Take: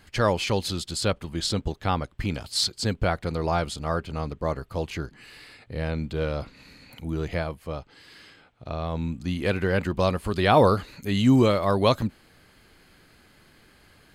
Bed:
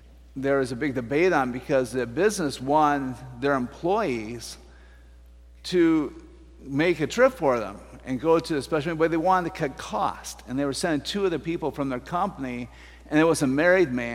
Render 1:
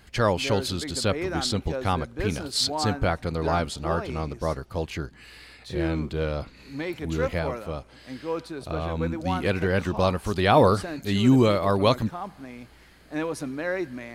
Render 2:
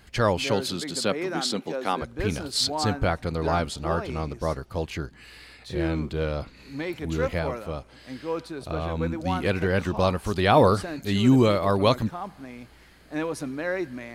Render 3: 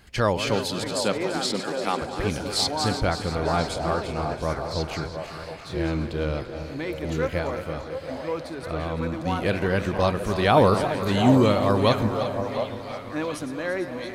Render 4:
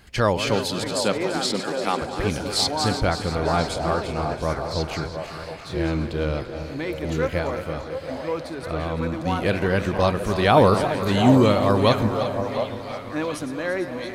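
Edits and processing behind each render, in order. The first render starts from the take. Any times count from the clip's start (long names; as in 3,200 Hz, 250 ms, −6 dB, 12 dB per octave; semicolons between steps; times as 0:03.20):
mix in bed −9.5 dB
0:00.44–0:02.01: high-pass filter 110 Hz → 230 Hz 24 dB per octave
feedback delay that plays each chunk backwards 170 ms, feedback 76%, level −11 dB; echo through a band-pass that steps 719 ms, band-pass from 680 Hz, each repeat 1.4 octaves, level −5.5 dB
level +2 dB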